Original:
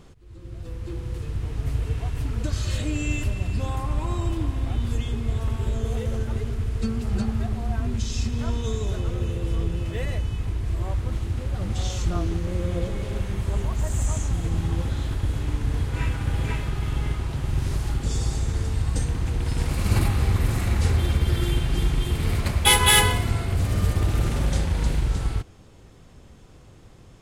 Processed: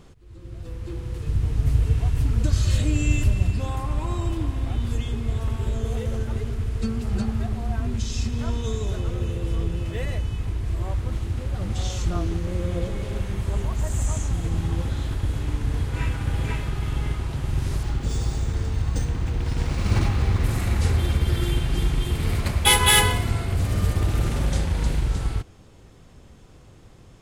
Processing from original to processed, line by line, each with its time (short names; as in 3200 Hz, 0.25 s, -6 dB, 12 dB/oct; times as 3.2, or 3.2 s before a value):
1.26–3.51 tone controls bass +6 dB, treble +3 dB
17.83–20.44 decimation joined by straight lines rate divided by 3×